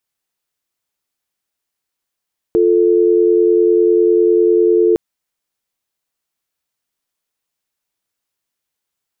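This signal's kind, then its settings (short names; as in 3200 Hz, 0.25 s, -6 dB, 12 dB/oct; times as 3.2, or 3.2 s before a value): call progress tone dial tone, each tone -11.5 dBFS 2.41 s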